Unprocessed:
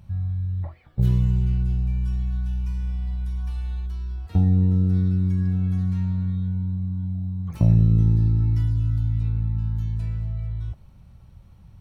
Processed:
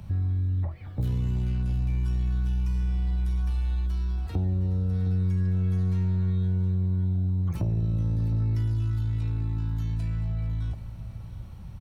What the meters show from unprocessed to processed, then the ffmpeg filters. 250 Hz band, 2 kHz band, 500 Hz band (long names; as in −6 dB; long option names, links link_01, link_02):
−5.5 dB, can't be measured, −0.5 dB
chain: -filter_complex "[0:a]acrossover=split=120|480[link_01][link_02][link_03];[link_01]acompressor=threshold=-33dB:ratio=4[link_04];[link_02]acompressor=threshold=-38dB:ratio=4[link_05];[link_03]acompressor=threshold=-54dB:ratio=4[link_06];[link_04][link_05][link_06]amix=inputs=3:normalize=0,asoftclip=type=tanh:threshold=-27.5dB,aecho=1:1:714:0.2,volume=7dB"